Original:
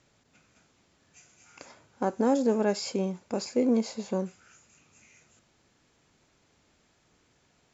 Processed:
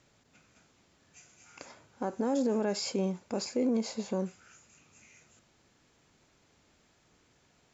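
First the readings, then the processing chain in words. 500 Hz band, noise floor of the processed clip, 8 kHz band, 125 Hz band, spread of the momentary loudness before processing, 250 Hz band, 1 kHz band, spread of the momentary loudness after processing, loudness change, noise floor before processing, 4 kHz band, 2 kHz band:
−4.5 dB, −68 dBFS, can't be measured, −2.0 dB, 8 LU, −3.5 dB, −5.5 dB, 21 LU, −3.5 dB, −68 dBFS, 0.0 dB, −4.0 dB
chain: brickwall limiter −21 dBFS, peak gain reduction 7 dB

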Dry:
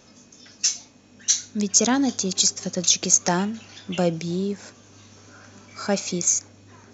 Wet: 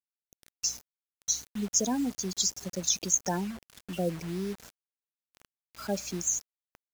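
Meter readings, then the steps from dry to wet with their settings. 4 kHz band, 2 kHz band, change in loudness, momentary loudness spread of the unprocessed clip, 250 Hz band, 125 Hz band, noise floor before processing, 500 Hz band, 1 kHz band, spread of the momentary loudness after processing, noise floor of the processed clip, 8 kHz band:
−9.5 dB, −12.0 dB, −8.5 dB, 12 LU, −8.0 dB, −8.0 dB, −53 dBFS, −8.5 dB, −9.0 dB, 12 LU, below −85 dBFS, can't be measured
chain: gate on every frequency bin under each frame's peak −15 dB strong
mains hum 60 Hz, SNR 23 dB
bit reduction 6 bits
level −8 dB

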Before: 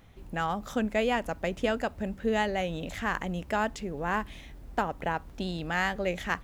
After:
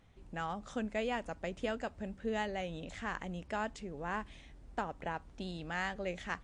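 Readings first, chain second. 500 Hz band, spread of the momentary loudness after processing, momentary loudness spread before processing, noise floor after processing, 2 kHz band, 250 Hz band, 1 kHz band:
−8.5 dB, 6 LU, 7 LU, −57 dBFS, −8.5 dB, −8.5 dB, −8.5 dB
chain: level −8 dB
MP3 48 kbit/s 22,050 Hz

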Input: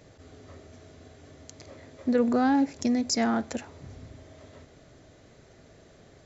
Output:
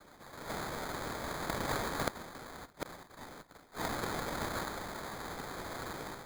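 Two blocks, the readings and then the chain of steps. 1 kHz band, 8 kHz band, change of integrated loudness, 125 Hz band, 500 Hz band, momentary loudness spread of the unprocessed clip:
−4.0 dB, can't be measured, −13.0 dB, +1.0 dB, −8.0 dB, 14 LU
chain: stylus tracing distortion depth 0.15 ms
low-pass filter 5,300 Hz
low-shelf EQ 410 Hz −10.5 dB
automatic gain control gain up to 16 dB
transient designer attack +1 dB, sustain +6 dB
cochlear-implant simulation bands 1
gate with flip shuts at −16 dBFS, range −35 dB
sample-rate reduction 2,800 Hz, jitter 0%
level +1 dB

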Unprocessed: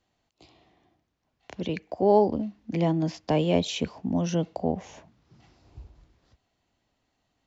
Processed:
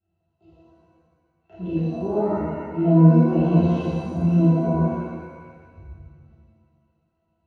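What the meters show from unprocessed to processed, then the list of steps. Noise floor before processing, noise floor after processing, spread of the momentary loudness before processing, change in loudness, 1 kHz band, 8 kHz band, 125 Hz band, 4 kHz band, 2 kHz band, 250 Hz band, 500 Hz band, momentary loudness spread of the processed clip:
−77 dBFS, −74 dBFS, 12 LU, +6.5 dB, 0.0 dB, can't be measured, +12.0 dB, below −10 dB, 0.0 dB, +8.5 dB, +0.5 dB, 15 LU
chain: resonances in every octave E, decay 0.15 s
reverb with rising layers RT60 1.5 s, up +7 semitones, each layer −8 dB, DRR −10.5 dB
level +2 dB

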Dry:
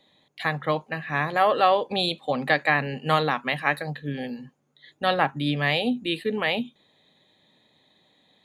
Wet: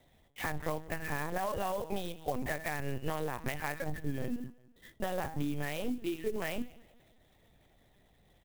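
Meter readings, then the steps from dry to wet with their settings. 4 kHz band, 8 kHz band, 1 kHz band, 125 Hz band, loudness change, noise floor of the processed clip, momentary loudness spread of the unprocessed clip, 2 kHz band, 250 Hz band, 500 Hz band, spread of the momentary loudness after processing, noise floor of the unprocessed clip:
−18.5 dB, can't be measured, −14.5 dB, −8.5 dB, −12.5 dB, −66 dBFS, 10 LU, −14.0 dB, −8.5 dB, −11.0 dB, 4 LU, −66 dBFS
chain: low-shelf EQ 290 Hz +3.5 dB
notch filter 1,300 Hz, Q 5.3
hum removal 160.4 Hz, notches 39
brickwall limiter −14 dBFS, peak gain reduction 7.5 dB
downward compressor 20 to 1, threshold −29 dBFS, peak gain reduction 11 dB
high-frequency loss of the air 230 metres
on a send: repeating echo 185 ms, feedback 45%, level −22 dB
on the sum: linear-prediction vocoder at 8 kHz pitch kept
converter with an unsteady clock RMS 0.033 ms

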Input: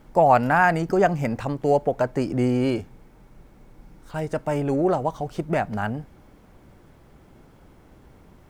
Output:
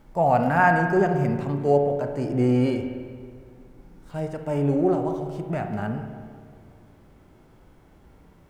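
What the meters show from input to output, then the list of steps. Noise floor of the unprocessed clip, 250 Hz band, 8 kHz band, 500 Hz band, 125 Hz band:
−52 dBFS, +1.0 dB, can't be measured, −1.0 dB, +1.5 dB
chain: harmonic and percussive parts rebalanced percussive −10 dB
on a send: feedback echo with a low-pass in the loop 186 ms, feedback 66%, low-pass 1,500 Hz, level −15.5 dB
on the sum: spring reverb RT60 1.6 s, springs 35/56 ms, chirp 60 ms, DRR 6 dB

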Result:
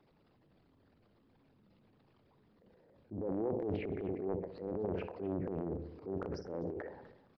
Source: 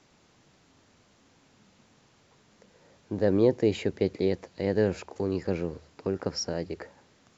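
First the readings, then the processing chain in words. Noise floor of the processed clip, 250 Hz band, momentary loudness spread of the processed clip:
−70 dBFS, −10.0 dB, 7 LU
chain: spectral envelope exaggerated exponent 2
brickwall limiter −20 dBFS, peak gain reduction 8 dB
flanger 0.57 Hz, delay 5.6 ms, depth 5.4 ms, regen −79%
treble cut that deepens with the level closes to 790 Hz, closed at −31.5 dBFS
downsampling to 11,025 Hz
repeating echo 64 ms, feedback 47%, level −13 dB
transient designer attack −7 dB, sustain +11 dB
far-end echo of a speakerphone 250 ms, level −16 dB
highs frequency-modulated by the lows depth 0.52 ms
level −3 dB

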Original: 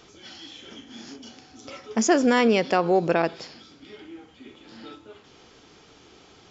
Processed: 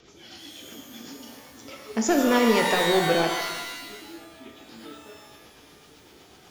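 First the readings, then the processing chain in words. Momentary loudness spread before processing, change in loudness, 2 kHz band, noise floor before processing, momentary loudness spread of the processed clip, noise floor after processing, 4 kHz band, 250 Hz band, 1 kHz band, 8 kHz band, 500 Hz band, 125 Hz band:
22 LU, −1.0 dB, +2.0 dB, −54 dBFS, 22 LU, −53 dBFS, +5.0 dB, −1.0 dB, 0.0 dB, can't be measured, −1.0 dB, −0.5 dB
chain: gain into a clipping stage and back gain 14 dB
rotating-speaker cabinet horn 8 Hz
reverb with rising layers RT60 1.1 s, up +12 semitones, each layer −2 dB, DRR 3.5 dB

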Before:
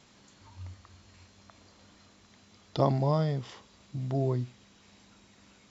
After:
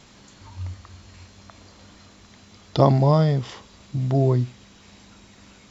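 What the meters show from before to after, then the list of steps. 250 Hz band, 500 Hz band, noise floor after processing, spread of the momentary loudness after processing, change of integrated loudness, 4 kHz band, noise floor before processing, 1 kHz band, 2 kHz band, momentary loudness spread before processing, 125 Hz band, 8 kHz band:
+9.5 dB, +8.5 dB, −51 dBFS, 19 LU, +9.5 dB, +8.5 dB, −60 dBFS, +8.5 dB, +8.5 dB, 20 LU, +10.0 dB, can't be measured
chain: low-shelf EQ 63 Hz +8.5 dB
level +8.5 dB

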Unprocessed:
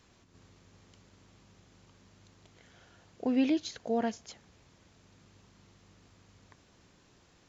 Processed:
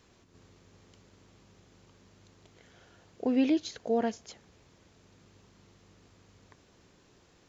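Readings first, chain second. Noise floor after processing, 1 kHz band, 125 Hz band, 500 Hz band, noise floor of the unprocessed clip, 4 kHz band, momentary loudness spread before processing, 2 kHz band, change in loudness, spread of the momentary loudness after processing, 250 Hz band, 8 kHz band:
−63 dBFS, +1.0 dB, +0.5 dB, +3.0 dB, −64 dBFS, 0.0 dB, 16 LU, 0.0 dB, +1.5 dB, 9 LU, +1.5 dB, can't be measured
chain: parametric band 420 Hz +4 dB 0.85 octaves

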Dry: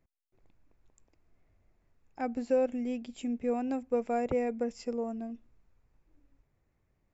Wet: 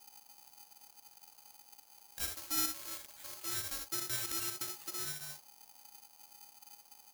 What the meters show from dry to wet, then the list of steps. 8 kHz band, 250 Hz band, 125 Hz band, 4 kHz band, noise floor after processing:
can't be measured, −19.0 dB, −2.5 dB, +14.0 dB, −63 dBFS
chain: loose part that buzzes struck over −39 dBFS, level −39 dBFS
high-pass filter 1,200 Hz 12 dB per octave
high-shelf EQ 2,700 Hz −11 dB
in parallel at −1 dB: downward compressor, threshold −54 dBFS, peak gain reduction 15 dB
on the sum: background noise brown −65 dBFS
soft clipping −33.5 dBFS, distortion −21 dB
ambience of single reflections 60 ms −5.5 dB, 79 ms −10 dB
bad sample-rate conversion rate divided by 8×, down filtered, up zero stuff
ring modulator with a square carrier 830 Hz
level −3.5 dB

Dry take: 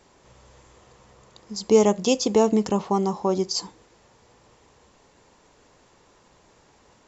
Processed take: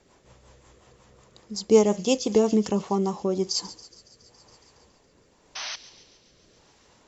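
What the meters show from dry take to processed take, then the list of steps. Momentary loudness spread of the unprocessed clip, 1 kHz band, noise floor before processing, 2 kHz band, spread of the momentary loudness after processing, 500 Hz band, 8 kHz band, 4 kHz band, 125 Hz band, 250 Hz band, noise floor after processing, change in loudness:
10 LU, −5.0 dB, −59 dBFS, 0.0 dB, 17 LU, −1.5 dB, can't be measured, −0.5 dB, −1.5 dB, −1.0 dB, −61 dBFS, −2.0 dB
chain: sound drawn into the spectrogram noise, 0:05.55–0:05.76, 590–6,300 Hz −33 dBFS
delay with a high-pass on its return 139 ms, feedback 74%, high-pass 2,900 Hz, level −14 dB
rotating-speaker cabinet horn 5.5 Hz, later 0.9 Hz, at 0:02.67

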